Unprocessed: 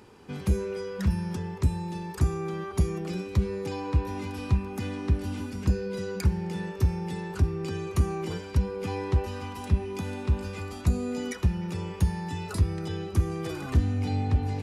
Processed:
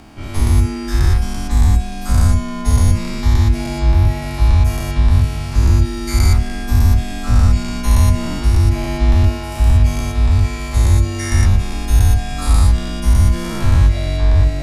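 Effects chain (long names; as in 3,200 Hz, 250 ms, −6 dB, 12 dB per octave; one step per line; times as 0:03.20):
every bin's largest magnitude spread in time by 240 ms
frequency shifter −150 Hz
level +6.5 dB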